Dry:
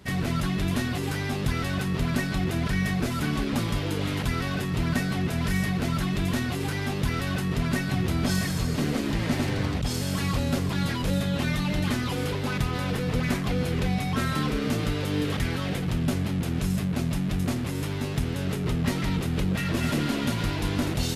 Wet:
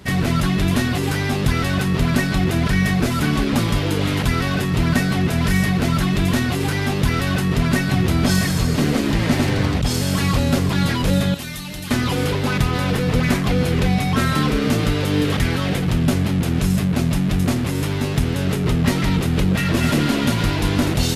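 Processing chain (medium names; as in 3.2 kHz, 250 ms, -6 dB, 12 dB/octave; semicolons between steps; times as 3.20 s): 11.34–11.91 s: pre-emphasis filter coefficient 0.8; trim +8 dB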